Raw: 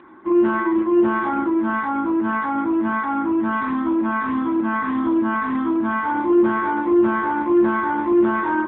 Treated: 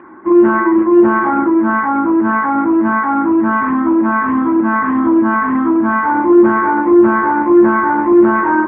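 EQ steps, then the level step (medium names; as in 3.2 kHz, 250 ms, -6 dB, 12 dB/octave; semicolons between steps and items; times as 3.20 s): low-pass 2.1 kHz 24 dB/octave; bass shelf 65 Hz -8 dB; +8.0 dB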